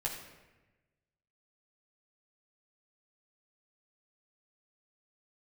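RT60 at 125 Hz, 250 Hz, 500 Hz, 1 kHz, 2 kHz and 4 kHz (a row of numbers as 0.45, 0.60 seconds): 1.6, 1.3, 1.2, 1.0, 1.1, 0.80 seconds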